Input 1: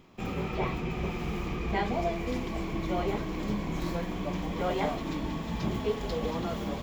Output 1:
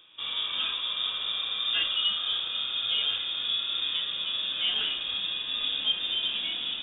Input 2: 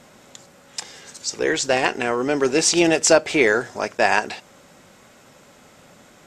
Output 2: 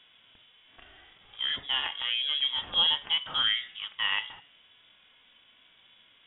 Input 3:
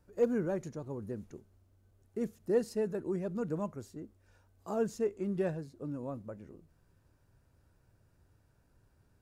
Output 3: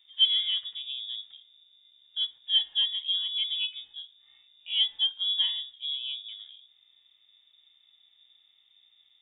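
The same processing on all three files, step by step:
voice inversion scrambler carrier 3,600 Hz
harmonic and percussive parts rebalanced percussive −10 dB
hum removal 142.6 Hz, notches 21
loudness normalisation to −27 LKFS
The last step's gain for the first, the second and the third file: +3.0, −6.5, +6.0 decibels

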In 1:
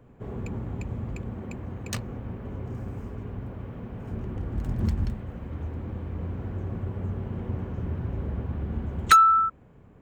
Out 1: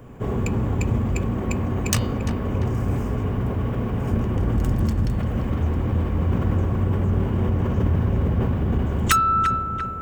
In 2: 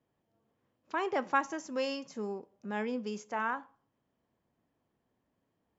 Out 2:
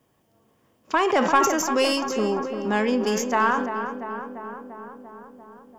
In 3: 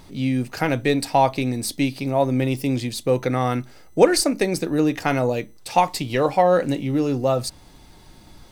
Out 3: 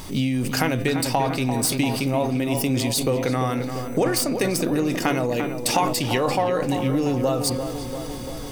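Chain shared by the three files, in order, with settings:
stylus tracing distortion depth 0.042 ms
high-shelf EQ 4,500 Hz +8 dB
notch filter 4,100 Hz, Q 14
hum removal 171.2 Hz, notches 28
downward compressor 10 to 1, threshold −29 dBFS
hollow resonant body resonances 1,100/2,900 Hz, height 6 dB
on a send: feedback echo with a low-pass in the loop 344 ms, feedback 71%, low-pass 2,100 Hz, level −8 dB
on the sum: level that may fall only so fast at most 48 dB per second
loudness normalisation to −23 LKFS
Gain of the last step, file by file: +11.0, +12.5, +9.0 decibels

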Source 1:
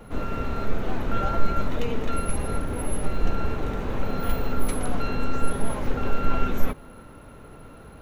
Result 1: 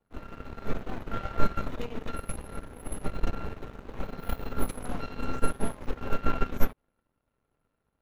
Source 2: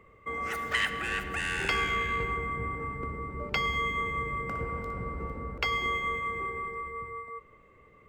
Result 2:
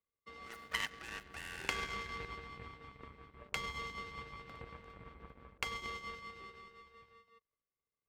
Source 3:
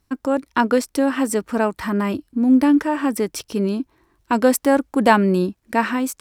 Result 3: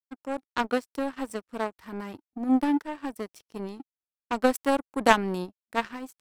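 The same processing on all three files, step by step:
power curve on the samples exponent 2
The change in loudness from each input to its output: −6.5, −11.5, −9.0 LU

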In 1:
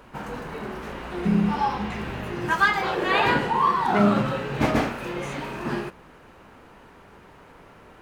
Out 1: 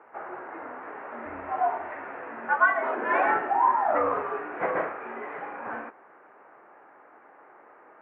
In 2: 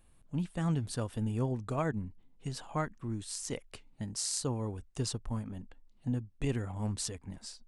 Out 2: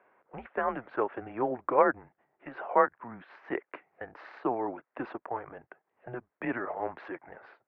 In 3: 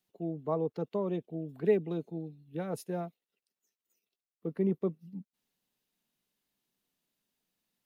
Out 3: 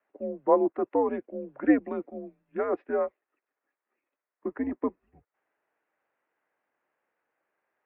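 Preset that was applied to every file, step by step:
single-sideband voice off tune −120 Hz 530–2,100 Hz
normalise the peak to −9 dBFS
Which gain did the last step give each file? −0.5, +13.5, +13.5 decibels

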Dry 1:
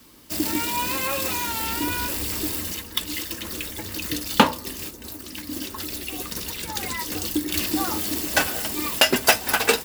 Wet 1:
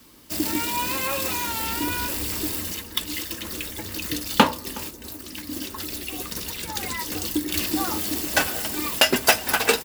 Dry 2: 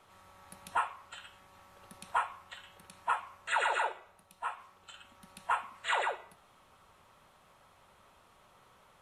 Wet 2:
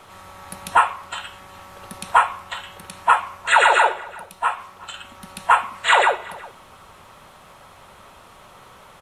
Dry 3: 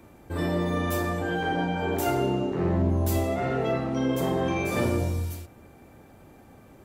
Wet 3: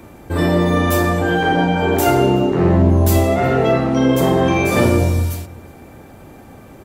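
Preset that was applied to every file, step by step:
slap from a distant wall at 63 metres, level −21 dB
normalise the peak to −1.5 dBFS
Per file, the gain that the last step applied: −0.5, +16.0, +11.0 decibels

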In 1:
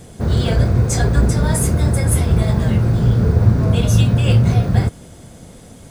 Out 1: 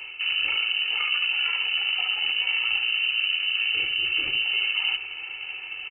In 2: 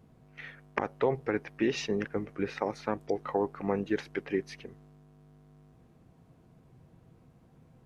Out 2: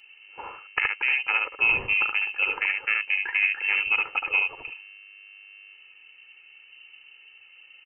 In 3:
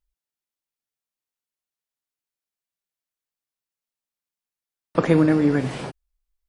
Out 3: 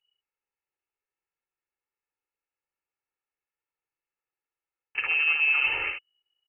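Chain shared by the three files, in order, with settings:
brickwall limiter −9.5 dBFS
on a send: single-tap delay 72 ms −5 dB
on the sum: pitch vibrato 13 Hz 25 cents
reversed playback
downward compressor 6 to 1, threshold −25 dBFS
reversed playback
tube saturation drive 22 dB, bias 0.65
voice inversion scrambler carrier 2,900 Hz
low-shelf EQ 190 Hz −6 dB
comb filter 2.3 ms, depth 68%
loudness normalisation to −23 LKFS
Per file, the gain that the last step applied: +5.0, +8.5, +4.0 decibels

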